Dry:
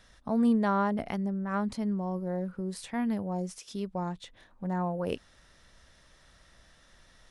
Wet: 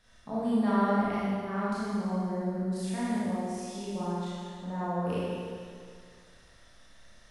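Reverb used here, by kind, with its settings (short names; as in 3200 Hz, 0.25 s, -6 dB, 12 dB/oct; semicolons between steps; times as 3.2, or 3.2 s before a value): Schroeder reverb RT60 2.1 s, combs from 25 ms, DRR -9.5 dB; gain -8.5 dB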